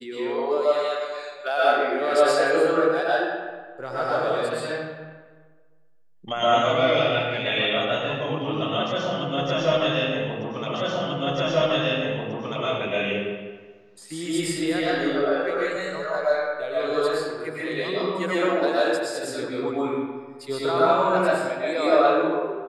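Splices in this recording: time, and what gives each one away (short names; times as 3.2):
10.74 repeat of the last 1.89 s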